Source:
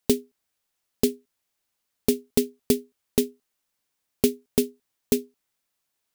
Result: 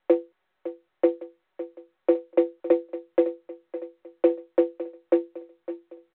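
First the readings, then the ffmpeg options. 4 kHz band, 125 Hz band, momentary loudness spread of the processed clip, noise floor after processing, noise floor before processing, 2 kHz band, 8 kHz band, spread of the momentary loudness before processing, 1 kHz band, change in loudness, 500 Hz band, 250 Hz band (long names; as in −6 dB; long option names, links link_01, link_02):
below −15 dB, below −30 dB, 16 LU, −76 dBFS, −79 dBFS, −1.5 dB, below −40 dB, 3 LU, +8.0 dB, +1.5 dB, +4.0 dB, +1.0 dB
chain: -filter_complex "[0:a]asplit=2[link_01][link_02];[link_02]asoftclip=type=tanh:threshold=-19dB,volume=-4.5dB[link_03];[link_01][link_03]amix=inputs=2:normalize=0,aeval=exprs='0.631*(cos(1*acos(clip(val(0)/0.631,-1,1)))-cos(1*PI/2))+0.0224*(cos(3*acos(clip(val(0)/0.631,-1,1)))-cos(3*PI/2))+0.0126*(cos(8*acos(clip(val(0)/0.631,-1,1)))-cos(8*PI/2))':channel_layout=same,aecho=1:1:558|1116|1674|2232|2790:0.2|0.0998|0.0499|0.0249|0.0125,highpass=frequency=250:width_type=q:width=0.5412,highpass=frequency=250:width_type=q:width=1.307,lowpass=frequency=2000:width_type=q:width=0.5176,lowpass=frequency=2000:width_type=q:width=0.7071,lowpass=frequency=2000:width_type=q:width=1.932,afreqshift=91,aecho=1:1:5.4:0.76" -ar 8000 -c:a pcm_mulaw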